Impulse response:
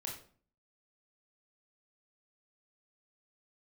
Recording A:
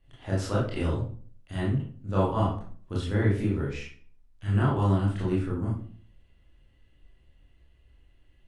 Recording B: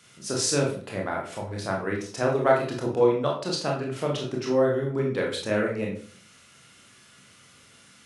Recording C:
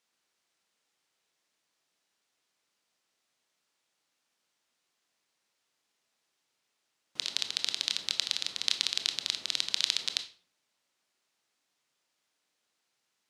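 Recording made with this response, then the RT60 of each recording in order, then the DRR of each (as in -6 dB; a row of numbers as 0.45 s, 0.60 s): B; 0.45 s, 0.45 s, 0.45 s; -6.5 dB, -2.0 dB, 8.0 dB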